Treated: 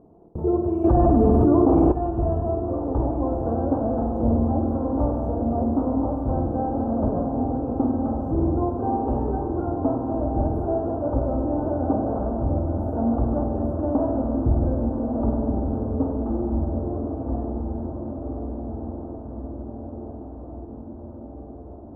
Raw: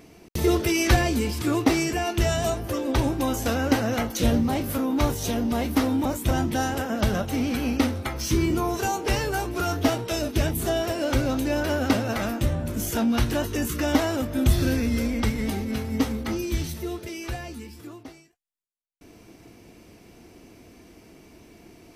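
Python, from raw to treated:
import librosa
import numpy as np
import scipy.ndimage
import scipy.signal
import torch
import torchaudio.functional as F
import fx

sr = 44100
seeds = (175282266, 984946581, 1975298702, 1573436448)

p1 = scipy.signal.sosfilt(scipy.signal.cheby2(4, 40, 1900.0, 'lowpass', fs=sr, output='sos'), x)
p2 = fx.peak_eq(p1, sr, hz=630.0, db=2.0, octaves=0.77)
p3 = p2 + fx.echo_diffused(p2, sr, ms=1217, feedback_pct=68, wet_db=-6.0, dry=0)
p4 = fx.rev_spring(p3, sr, rt60_s=1.8, pass_ms=(48,), chirp_ms=55, drr_db=3.5)
p5 = fx.env_flatten(p4, sr, amount_pct=100, at=(0.84, 1.92))
y = p5 * 10.0 ** (-2.5 / 20.0)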